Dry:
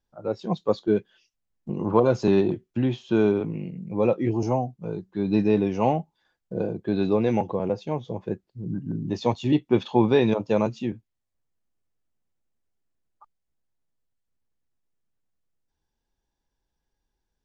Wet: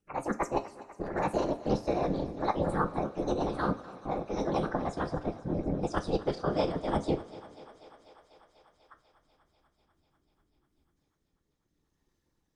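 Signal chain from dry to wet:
gliding playback speed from 171% → 107%
reversed playback
downward compressor, threshold −28 dBFS, peak gain reduction 14 dB
reversed playback
amplitude modulation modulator 300 Hz, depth 80%
rotating-speaker cabinet horn 6.3 Hz, later 0.7 Hz, at 0:09.90
random phases in short frames
feedback echo with a high-pass in the loop 246 ms, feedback 80%, high-pass 310 Hz, level −17.5 dB
on a send at −7 dB: convolution reverb, pre-delay 3 ms
on the sum: level +7 dB

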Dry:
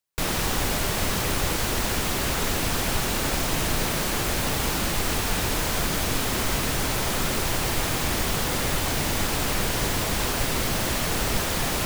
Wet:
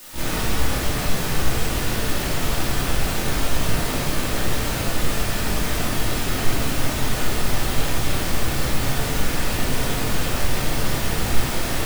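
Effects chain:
pitch-shifted copies added +7 semitones −6 dB, +12 semitones −4 dB
bit-depth reduction 6 bits, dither triangular
rectangular room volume 400 cubic metres, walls mixed, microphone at 2.6 metres
level −9 dB

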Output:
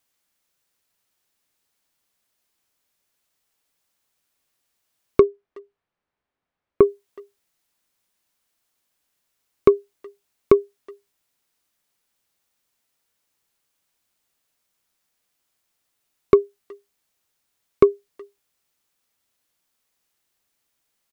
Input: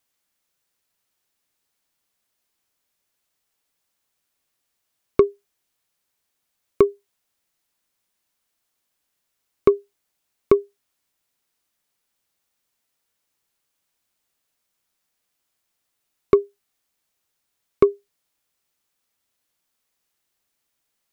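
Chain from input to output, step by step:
0:05.22–0:06.83: Bessel low-pass filter 1,500 Hz, order 2
far-end echo of a speakerphone 370 ms, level −24 dB
level +1.5 dB

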